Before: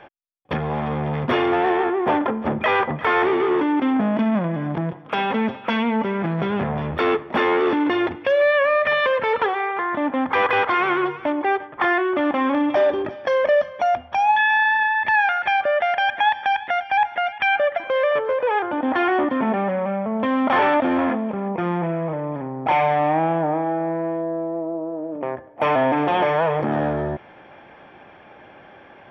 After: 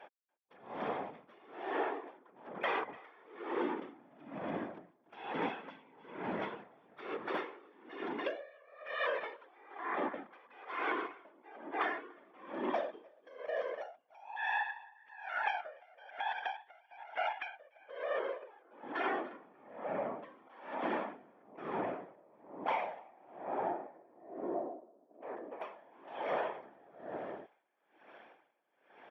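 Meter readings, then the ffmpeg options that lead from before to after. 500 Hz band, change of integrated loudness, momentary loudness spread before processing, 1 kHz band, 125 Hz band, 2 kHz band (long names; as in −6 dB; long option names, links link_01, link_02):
−19.5 dB, −18.5 dB, 8 LU, −19.0 dB, −29.0 dB, −19.0 dB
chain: -filter_complex "[0:a]asplit=2[link_01][link_02];[link_02]adelay=291.5,volume=-7dB,highshelf=frequency=4000:gain=-6.56[link_03];[link_01][link_03]amix=inputs=2:normalize=0,afftfilt=real='hypot(re,im)*cos(2*PI*random(0))':imag='hypot(re,im)*sin(2*PI*random(1))':win_size=512:overlap=0.75,highpass=330,acompressor=threshold=-26dB:ratio=16,aeval=exprs='val(0)*pow(10,-28*(0.5-0.5*cos(2*PI*1.1*n/s))/20)':channel_layout=same,volume=-3dB"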